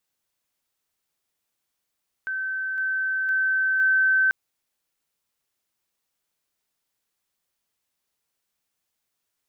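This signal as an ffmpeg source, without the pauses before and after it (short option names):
-f lavfi -i "aevalsrc='pow(10,(-25.5+3*floor(t/0.51))/20)*sin(2*PI*1540*t)':d=2.04:s=44100"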